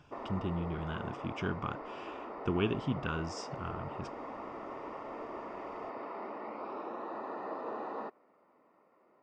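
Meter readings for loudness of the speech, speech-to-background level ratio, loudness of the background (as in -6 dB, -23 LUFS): -37.5 LUFS, 5.5 dB, -43.0 LUFS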